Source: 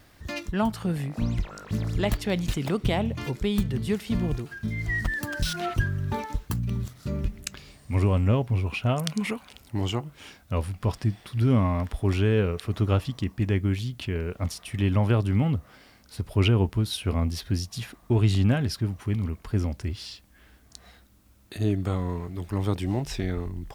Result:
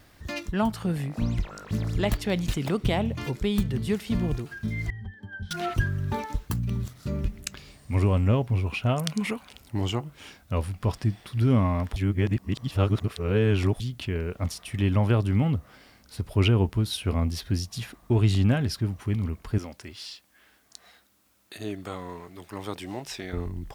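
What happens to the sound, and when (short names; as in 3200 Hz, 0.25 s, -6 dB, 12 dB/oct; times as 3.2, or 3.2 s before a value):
4.9–5.51 octave resonator G, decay 0.12 s
11.96–13.8 reverse
19.58–23.33 HPF 610 Hz 6 dB/oct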